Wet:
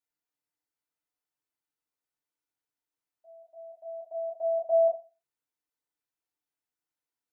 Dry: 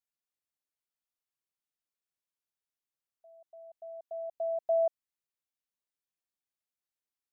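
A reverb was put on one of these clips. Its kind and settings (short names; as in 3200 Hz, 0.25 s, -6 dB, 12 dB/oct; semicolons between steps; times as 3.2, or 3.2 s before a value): FDN reverb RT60 0.32 s, low-frequency decay 0.8×, high-frequency decay 0.45×, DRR -7.5 dB; gain -6 dB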